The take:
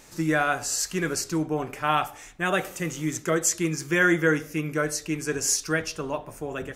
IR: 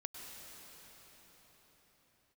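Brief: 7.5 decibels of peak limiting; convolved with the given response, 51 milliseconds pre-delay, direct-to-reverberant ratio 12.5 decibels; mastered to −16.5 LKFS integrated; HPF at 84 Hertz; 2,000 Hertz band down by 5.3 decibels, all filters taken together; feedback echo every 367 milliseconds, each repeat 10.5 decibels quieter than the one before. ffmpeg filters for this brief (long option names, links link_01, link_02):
-filter_complex "[0:a]highpass=84,equalizer=frequency=2000:width_type=o:gain=-7.5,alimiter=limit=-18dB:level=0:latency=1,aecho=1:1:367|734|1101:0.299|0.0896|0.0269,asplit=2[link_01][link_02];[1:a]atrim=start_sample=2205,adelay=51[link_03];[link_02][link_03]afir=irnorm=-1:irlink=0,volume=-10.5dB[link_04];[link_01][link_04]amix=inputs=2:normalize=0,volume=12.5dB"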